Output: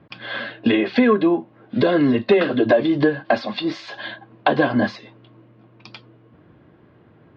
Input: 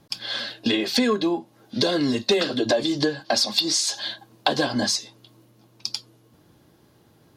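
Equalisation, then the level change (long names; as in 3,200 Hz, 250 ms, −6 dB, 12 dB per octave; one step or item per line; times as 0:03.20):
high-pass filter 50 Hz
low-pass filter 2,500 Hz 24 dB per octave
notch filter 840 Hz, Q 12
+6.0 dB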